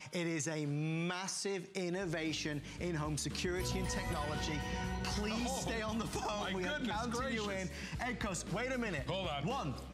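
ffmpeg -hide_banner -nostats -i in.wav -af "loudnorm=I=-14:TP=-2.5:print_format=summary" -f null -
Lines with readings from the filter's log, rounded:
Input Integrated:    -38.1 LUFS
Input True Peak:     -24.3 dBTP
Input LRA:             1.0 LU
Input Threshold:     -48.1 LUFS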